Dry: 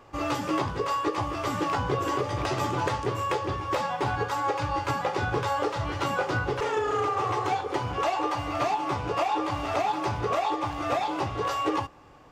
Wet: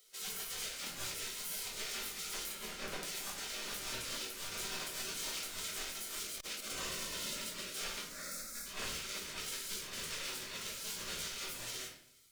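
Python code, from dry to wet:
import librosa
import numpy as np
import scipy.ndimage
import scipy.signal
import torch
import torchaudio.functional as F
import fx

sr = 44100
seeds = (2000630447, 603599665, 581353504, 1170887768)

y = fx.lower_of_two(x, sr, delay_ms=1.1)
y = F.preemphasis(torch.from_numpy(y), 0.8).numpy()
y = fx.hum_notches(y, sr, base_hz=50, count=5)
y = fx.spec_gate(y, sr, threshold_db=-20, keep='weak')
y = fx.high_shelf(y, sr, hz=3100.0, db=-12.0, at=(2.52, 3.03))
y = fx.over_compress(y, sr, threshold_db=-52.0, ratio=-0.5)
y = fx.fixed_phaser(y, sr, hz=600.0, stages=8, at=(8.05, 8.66))
y = fx.room_shoebox(y, sr, seeds[0], volume_m3=84.0, walls='mixed', distance_m=1.2)
y = fx.transformer_sat(y, sr, knee_hz=600.0, at=(6.22, 6.7))
y = y * librosa.db_to_amplitude(6.5)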